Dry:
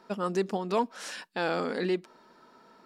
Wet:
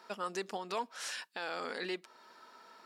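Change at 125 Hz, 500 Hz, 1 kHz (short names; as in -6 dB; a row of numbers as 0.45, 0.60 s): -17.0, -11.0, -6.5 dB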